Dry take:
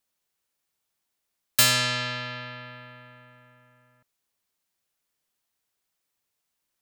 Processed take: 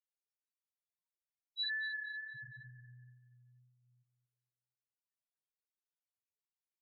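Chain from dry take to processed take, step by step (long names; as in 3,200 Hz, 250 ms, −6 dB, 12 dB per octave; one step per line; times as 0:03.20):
tape wow and flutter 19 cents
spectral peaks only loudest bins 1
repeating echo 236 ms, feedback 36%, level −12.5 dB
level −1.5 dB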